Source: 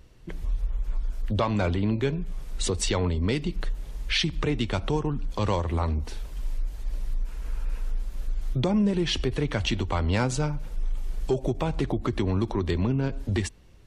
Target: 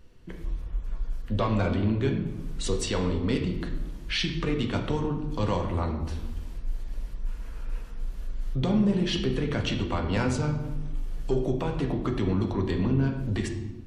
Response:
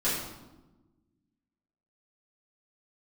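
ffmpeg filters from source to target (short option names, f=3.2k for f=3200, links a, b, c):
-filter_complex "[0:a]asplit=2[a][b];[1:a]atrim=start_sample=2205,lowpass=5k[c];[b][c]afir=irnorm=-1:irlink=0,volume=-10.5dB[d];[a][d]amix=inputs=2:normalize=0,volume=-5dB"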